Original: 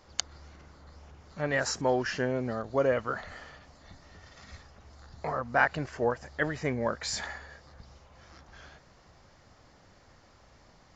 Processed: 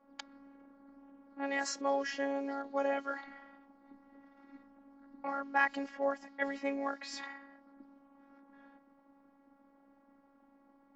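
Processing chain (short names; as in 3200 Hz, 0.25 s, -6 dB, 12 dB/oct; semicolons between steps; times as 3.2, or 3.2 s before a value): frequency shift +130 Hz; robotiser 277 Hz; low-pass opened by the level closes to 960 Hz, open at -26 dBFS; gain -3 dB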